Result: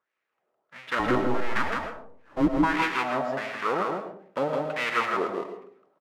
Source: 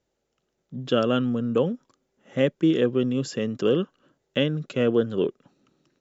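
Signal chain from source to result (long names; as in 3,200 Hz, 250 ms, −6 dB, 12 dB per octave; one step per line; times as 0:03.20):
each half-wave held at its own peak
LFO wah 1.5 Hz 590–2,300 Hz, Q 3.4
0:00.99–0:02.51: frequency shifter −250 Hz
single-tap delay 162 ms −3.5 dB
on a send at −7 dB: convolution reverb RT60 0.55 s, pre-delay 65 ms
on the sum: level +3 dB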